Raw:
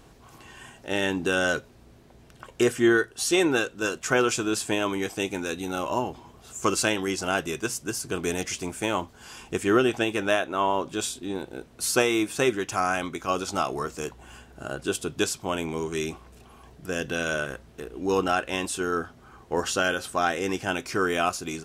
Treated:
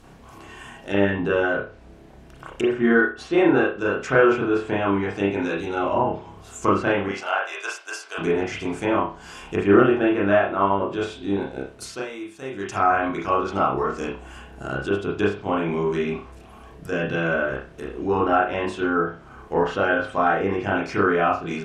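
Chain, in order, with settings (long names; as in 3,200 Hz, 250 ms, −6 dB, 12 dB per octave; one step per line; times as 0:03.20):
0:07.08–0:08.18: high-pass filter 630 Hz 24 dB per octave
0:11.70–0:12.80: duck −17 dB, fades 0.31 s
treble cut that deepens with the level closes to 1,800 Hz, closed at −23.5 dBFS
0:01.41–0:02.70: downward compressor, threshold −25 dBFS, peak gain reduction 8 dB
convolution reverb, pre-delay 30 ms, DRR −4.5 dB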